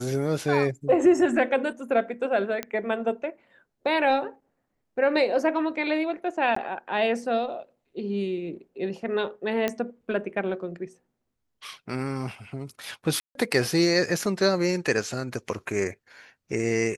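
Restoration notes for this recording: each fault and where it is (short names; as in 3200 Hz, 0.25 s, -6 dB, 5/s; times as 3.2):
2.63 pop -14 dBFS
6.55–6.56 gap 14 ms
9.68 pop -12 dBFS
13.2–13.35 gap 0.152 s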